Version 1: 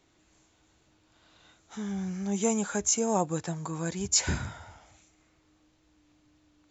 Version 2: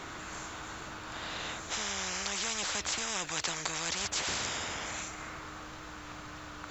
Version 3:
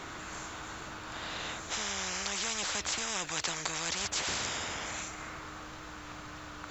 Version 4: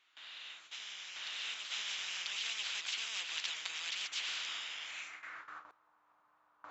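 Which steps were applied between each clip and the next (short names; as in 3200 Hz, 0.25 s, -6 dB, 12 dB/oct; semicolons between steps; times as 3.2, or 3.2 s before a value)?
bell 1300 Hz +12 dB 1.1 oct; spectral compressor 10:1; gain -6.5 dB
nothing audible
band-pass sweep 3000 Hz -> 970 Hz, 4.87–5.86; gate with hold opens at -39 dBFS; reverse echo 0.992 s -5.5 dB; gain +1 dB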